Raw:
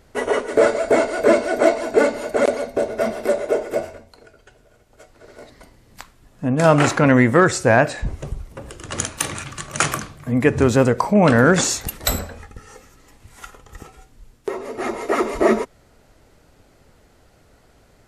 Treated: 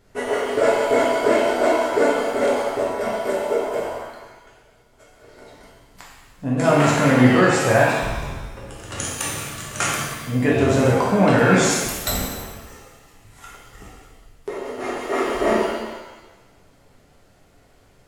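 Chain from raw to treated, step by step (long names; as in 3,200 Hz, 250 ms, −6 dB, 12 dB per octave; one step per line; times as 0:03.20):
reverb with rising layers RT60 1.1 s, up +7 semitones, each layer −8 dB, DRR −4.5 dB
level −7 dB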